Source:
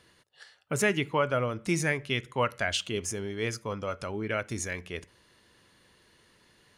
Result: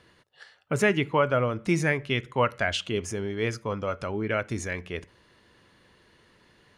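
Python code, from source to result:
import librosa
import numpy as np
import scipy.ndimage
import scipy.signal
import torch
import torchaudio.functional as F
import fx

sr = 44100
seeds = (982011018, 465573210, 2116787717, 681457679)

y = fx.high_shelf(x, sr, hz=5100.0, db=-12.0)
y = y * librosa.db_to_amplitude(4.0)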